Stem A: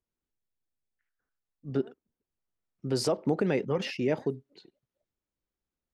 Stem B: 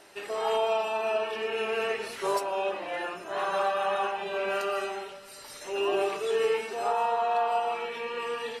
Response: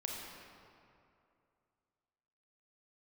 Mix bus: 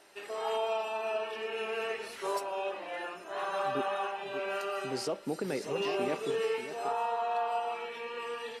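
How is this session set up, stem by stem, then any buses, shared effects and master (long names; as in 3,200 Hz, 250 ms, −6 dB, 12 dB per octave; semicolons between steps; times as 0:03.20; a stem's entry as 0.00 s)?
−6.0 dB, 2.00 s, no send, echo send −11 dB, high-pass filter 160 Hz
−5.0 dB, 0.00 s, no send, no echo send, mains-hum notches 50/100/150/200 Hz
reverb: not used
echo: single-tap delay 583 ms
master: low-shelf EQ 190 Hz −4.5 dB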